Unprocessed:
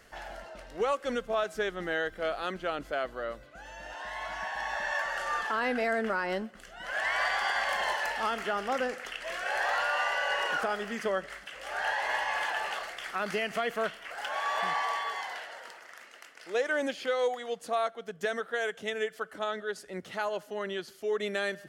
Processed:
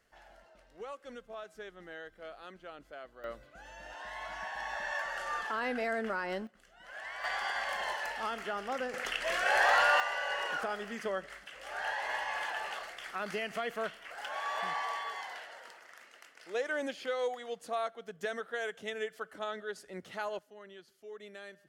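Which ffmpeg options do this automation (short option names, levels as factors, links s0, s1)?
-af "asetnsamples=n=441:p=0,asendcmd='3.24 volume volume -4.5dB;6.47 volume volume -13dB;7.24 volume volume -5.5dB;8.94 volume volume 4dB;10 volume volume -5dB;20.39 volume volume -16.5dB',volume=0.178"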